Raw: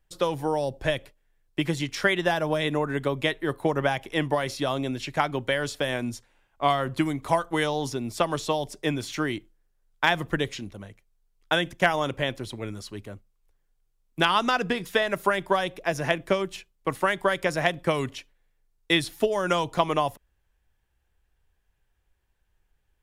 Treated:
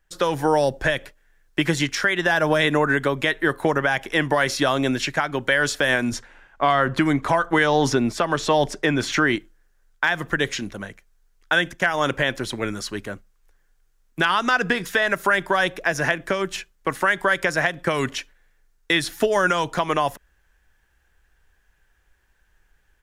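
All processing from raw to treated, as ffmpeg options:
-filter_complex "[0:a]asettb=1/sr,asplit=3[a][b][c];[a]atrim=end=6.124[d];[b]atrim=start=6.12:end=9.36,asetpts=PTS-STARTPTS,afade=t=in:d=0.004:c=qsin,afade=t=out:st=3.236:d=0.004:c=qsin,lowpass=f=3.2k:p=1,acontrast=39[e];[c]atrim=start=9.356[f];[d][e]acrossfade=d=0.004:c1=hsin:c2=qsin[g];[g][f]acrossfade=d=0.004:c1=qsin:c2=hsin,equalizer=f=100:t=o:w=0.67:g=-7,equalizer=f=1.6k:t=o:w=0.67:g=9,equalizer=f=6.3k:t=o:w=0.67:g=4,dynaudnorm=f=110:g=3:m=6.5dB,alimiter=limit=-9.5dB:level=0:latency=1:release=143,volume=1.5dB"

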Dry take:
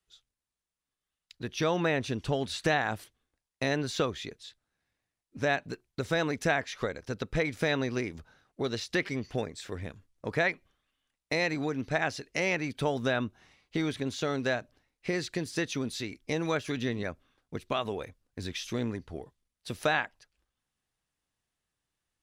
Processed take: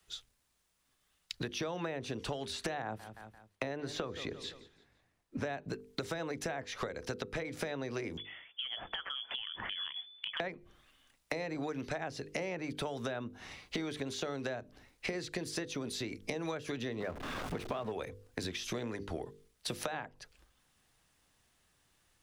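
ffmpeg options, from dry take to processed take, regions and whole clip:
-filter_complex "[0:a]asettb=1/sr,asplit=3[a][b][c];[a]atrim=end=2.824[d];[b]atrim=start=2.82:end=5.45,asetpts=PTS-STARTPTS,afade=t=in:d=0.004:c=qsin,afade=t=out:st=2.626:d=0.004:c=qsin,highshelf=f=2.7k:g=-11,aecho=1:1:171|342|513:0.0794|0.0286|0.0103,atrim=end_sample=115983[e];[c]atrim=start=5.446[f];[d][e]acrossfade=d=0.004:c1=hsin:c2=qsin[g];[g][f]acrossfade=d=0.004:c1=qsin:c2=hsin,asettb=1/sr,asplit=3[h][i][j];[h]atrim=end=8.174[k];[i]atrim=start=8.17:end=10.4,asetpts=PTS-STARTPTS,afade=t=in:d=0.004:c=qsin,afade=t=out:st=2.226:d=0.004:c=qsin,lowpass=f=3k:t=q:w=0.5098,lowpass=f=3k:t=q:w=0.6013,lowpass=f=3k:t=q:w=0.9,lowpass=f=3k:t=q:w=2.563,afreqshift=-3500,acompressor=threshold=-48dB:ratio=3:attack=3.2:release=140:knee=1:detection=peak[l];[j]atrim=start=10.396[m];[k][l]acrossfade=d=0.004:c1=hsin:c2=qsin[n];[n][m]acrossfade=d=0.004:c1=qsin:c2=hsin,asettb=1/sr,asplit=3[o][p][q];[o]atrim=end=17.004[r];[p]atrim=start=17:end=17.92,asetpts=PTS-STARTPTS,afade=t=in:d=0.004:c=qsin,afade=t=out:st=0.916:d=0.004:c=qsin,aeval=exprs='val(0)+0.5*0.0158*sgn(val(0))':c=same,lowpass=f=1.5k:p=1[s];[q]atrim=start=17.916[t];[r][s]acrossfade=d=0.004:c1=hsin:c2=qsin[u];[u][t]acrossfade=d=0.004:c1=qsin:c2=hsin,acrossover=split=120|360|970[v][w][x][y];[v]acompressor=threshold=-53dB:ratio=4[z];[w]acompressor=threshold=-45dB:ratio=4[aa];[x]acompressor=threshold=-36dB:ratio=4[ab];[y]acompressor=threshold=-44dB:ratio=4[ac];[z][aa][ab][ac]amix=inputs=4:normalize=0,bandreject=f=50:t=h:w=6,bandreject=f=100:t=h:w=6,bandreject=f=150:t=h:w=6,bandreject=f=200:t=h:w=6,bandreject=f=250:t=h:w=6,bandreject=f=300:t=h:w=6,bandreject=f=350:t=h:w=6,bandreject=f=400:t=h:w=6,bandreject=f=450:t=h:w=6,bandreject=f=500:t=h:w=6,acompressor=threshold=-50dB:ratio=5,volume=13.5dB"

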